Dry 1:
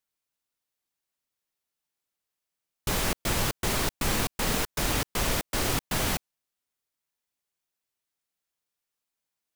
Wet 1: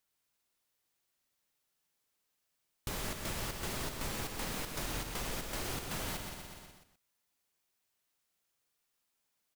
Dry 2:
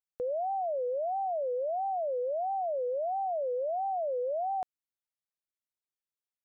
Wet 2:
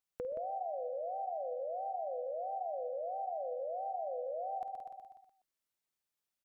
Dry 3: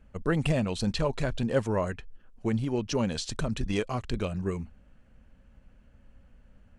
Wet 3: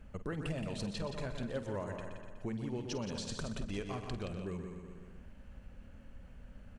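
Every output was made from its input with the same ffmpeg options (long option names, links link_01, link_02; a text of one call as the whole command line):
ffmpeg -i in.wav -filter_complex "[0:a]asplit=2[link_01][link_02];[link_02]aecho=0:1:123|246|369|492|615:0.316|0.142|0.064|0.0288|0.013[link_03];[link_01][link_03]amix=inputs=2:normalize=0,acompressor=threshold=-48dB:ratio=2.5,asplit=2[link_04][link_05];[link_05]aecho=0:1:50|173:0.211|0.335[link_06];[link_04][link_06]amix=inputs=2:normalize=0,volume=3.5dB" out.wav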